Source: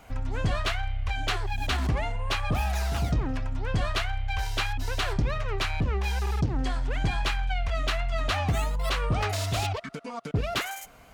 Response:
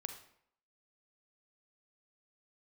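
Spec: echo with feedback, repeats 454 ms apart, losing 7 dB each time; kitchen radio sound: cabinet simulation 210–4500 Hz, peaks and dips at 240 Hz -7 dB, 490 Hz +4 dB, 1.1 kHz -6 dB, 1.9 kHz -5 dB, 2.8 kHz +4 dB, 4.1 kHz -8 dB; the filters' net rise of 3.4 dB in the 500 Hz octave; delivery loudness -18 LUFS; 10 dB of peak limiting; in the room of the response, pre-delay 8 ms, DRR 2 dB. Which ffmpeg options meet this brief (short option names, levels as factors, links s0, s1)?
-filter_complex "[0:a]equalizer=f=500:t=o:g=3,alimiter=level_in=1.12:limit=0.0631:level=0:latency=1,volume=0.891,aecho=1:1:454|908|1362|1816|2270:0.447|0.201|0.0905|0.0407|0.0183,asplit=2[s0][s1];[1:a]atrim=start_sample=2205,adelay=8[s2];[s1][s2]afir=irnorm=-1:irlink=0,volume=1[s3];[s0][s3]amix=inputs=2:normalize=0,highpass=210,equalizer=f=240:t=q:w=4:g=-7,equalizer=f=490:t=q:w=4:g=4,equalizer=f=1100:t=q:w=4:g=-6,equalizer=f=1900:t=q:w=4:g=-5,equalizer=f=2800:t=q:w=4:g=4,equalizer=f=4100:t=q:w=4:g=-8,lowpass=f=4500:w=0.5412,lowpass=f=4500:w=1.3066,volume=7.08"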